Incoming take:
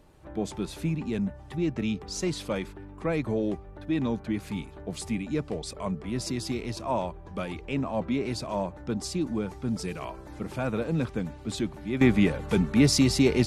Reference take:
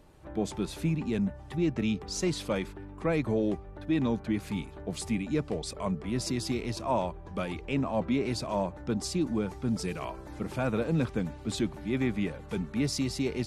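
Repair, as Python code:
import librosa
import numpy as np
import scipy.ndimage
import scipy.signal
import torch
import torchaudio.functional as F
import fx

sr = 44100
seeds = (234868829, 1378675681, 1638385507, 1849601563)

y = fx.gain(x, sr, db=fx.steps((0.0, 0.0), (12.01, -9.0)))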